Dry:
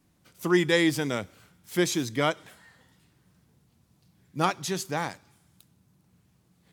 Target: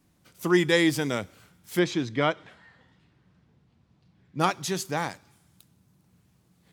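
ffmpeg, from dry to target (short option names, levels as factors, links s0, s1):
-filter_complex "[0:a]asettb=1/sr,asplit=3[s0][s1][s2];[s0]atrim=end=1.794[s3];[s1]atrim=start=1.79:end=4.4,asetpts=PTS-STARTPTS,afade=t=in:d=0.004:c=qsin,afade=t=out:st=2.606:d=0.004:c=qsin,lowpass=3600[s4];[s2]atrim=start=4.396[s5];[s3][s4]acrossfade=d=0.004:c1=hsin:c2=qsin[s6];[s6][s5]acrossfade=d=0.004:c1=qsin:c2=hsin,volume=1.12"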